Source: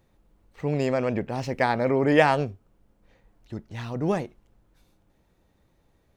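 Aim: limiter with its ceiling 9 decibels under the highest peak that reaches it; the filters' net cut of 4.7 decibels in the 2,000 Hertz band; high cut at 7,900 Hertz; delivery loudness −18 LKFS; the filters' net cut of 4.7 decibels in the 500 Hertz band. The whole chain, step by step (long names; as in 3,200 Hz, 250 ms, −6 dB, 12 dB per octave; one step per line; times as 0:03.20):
low-pass filter 7,900 Hz
parametric band 500 Hz −5.5 dB
parametric band 2,000 Hz −5.5 dB
level +13 dB
brickwall limiter −6 dBFS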